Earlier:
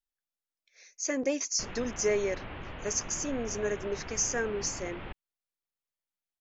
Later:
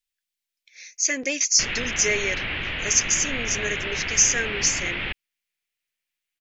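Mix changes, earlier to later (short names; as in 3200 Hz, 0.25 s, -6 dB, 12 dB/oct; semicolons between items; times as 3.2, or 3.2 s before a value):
background +7.5 dB; master: add resonant high shelf 1500 Hz +11.5 dB, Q 1.5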